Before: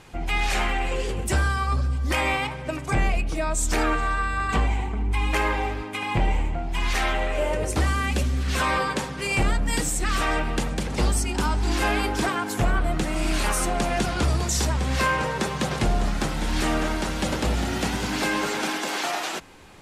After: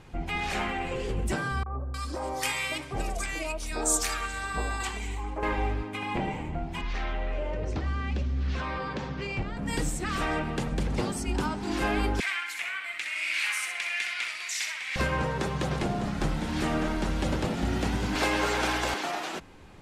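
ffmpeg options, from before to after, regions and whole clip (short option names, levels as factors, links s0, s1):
-filter_complex "[0:a]asettb=1/sr,asplit=3[s0][s1][s2];[s0]atrim=end=1.634[s3];[s1]atrim=start=1.63:end=5.43,asetpts=PTS-STARTPTS,afade=t=in:d=0.004:c=qsin,afade=t=out:st=3.796:d=0.004:c=qsin,bass=f=250:g=-12,treble=f=4000:g=14,acrossover=split=210|1100[s4][s5][s6];[s5]adelay=30[s7];[s6]adelay=310[s8];[s4][s7][s8]amix=inputs=3:normalize=0,atrim=end_sample=167580[s9];[s2]atrim=start=5.426[s10];[s3][s9]acrossfade=d=0.004:c1=hsin:c2=qsin[s11];[s11][s10]acrossfade=d=0.004:c1=qsin:c2=hsin,asettb=1/sr,asplit=3[s12][s13][s14];[s12]atrim=end=6.814[s15];[s13]atrim=start=6.81:end=9.57,asetpts=PTS-STARTPTS,afade=t=in:d=0.004:c=qsin,afade=t=out:st=2.756:d=0.004:c=qsin,lowpass=f=5800:w=0.5412,lowpass=f=5800:w=1.3066,acompressor=threshold=0.0501:ratio=4:attack=3.2:release=140:knee=1:detection=peak[s16];[s14]atrim=start=9.566[s17];[s15][s16]acrossfade=d=0.004:c1=hsin:c2=qsin[s18];[s18][s17]acrossfade=d=0.004:c1=qsin:c2=hsin,asettb=1/sr,asplit=3[s19][s20][s21];[s19]atrim=end=12.204[s22];[s20]atrim=start=12.2:end=14.96,asetpts=PTS-STARTPTS,afade=t=in:d=0.004:c=qsin,afade=t=out:st=2.756:d=0.004:c=qsin,highpass=f=2200:t=q:w=4.7,aecho=1:1:64|128|192|256:0.501|0.15|0.0451|0.0135,atrim=end_sample=121716[s23];[s21]atrim=start=14.956[s24];[s22][s23]acrossfade=d=0.004:c1=hsin:c2=qsin[s25];[s25][s24]acrossfade=d=0.004:c1=qsin:c2=hsin,asettb=1/sr,asplit=3[s26][s27][s28];[s26]atrim=end=18.154[s29];[s27]atrim=start=18.15:end=18.94,asetpts=PTS-STARTPTS,afade=t=in:d=0.004:c=qsin,afade=t=out:st=0.786:d=0.004:c=qsin,highpass=420,acontrast=36,aeval=exprs='val(0)+0.0141*(sin(2*PI*60*n/s)+sin(2*PI*2*60*n/s)/2+sin(2*PI*3*60*n/s)/3+sin(2*PI*4*60*n/s)/4+sin(2*PI*5*60*n/s)/5)':c=same[s30];[s28]atrim=start=18.936[s31];[s29][s30]acrossfade=d=0.004:c1=hsin:c2=qsin[s32];[s32][s31]acrossfade=d=0.004:c1=qsin:c2=hsin,highshelf=f=5400:g=-6.5,afftfilt=real='re*lt(hypot(re,im),0.501)':imag='im*lt(hypot(re,im),0.501)':win_size=1024:overlap=0.75,lowshelf=f=310:g=6.5,volume=0.562"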